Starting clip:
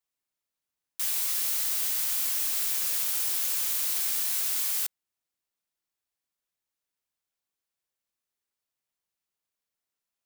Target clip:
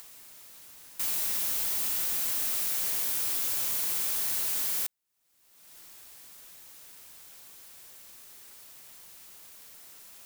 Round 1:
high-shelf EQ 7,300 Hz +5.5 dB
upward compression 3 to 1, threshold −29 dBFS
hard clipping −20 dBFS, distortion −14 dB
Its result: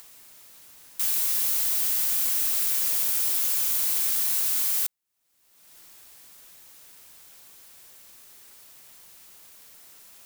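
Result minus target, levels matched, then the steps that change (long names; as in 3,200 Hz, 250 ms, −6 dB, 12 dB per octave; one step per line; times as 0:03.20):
hard clipping: distortion −8 dB
change: hard clipping −28 dBFS, distortion −6 dB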